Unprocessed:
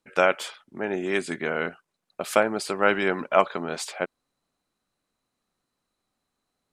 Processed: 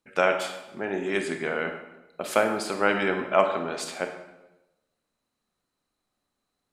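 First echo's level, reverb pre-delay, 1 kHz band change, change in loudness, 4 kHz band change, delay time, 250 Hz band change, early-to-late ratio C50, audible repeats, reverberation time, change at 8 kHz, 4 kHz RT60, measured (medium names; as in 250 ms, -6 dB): no echo, 25 ms, -1.0 dB, -1.0 dB, -1.0 dB, no echo, -0.5 dB, 7.0 dB, no echo, 1.0 s, -1.0 dB, 0.75 s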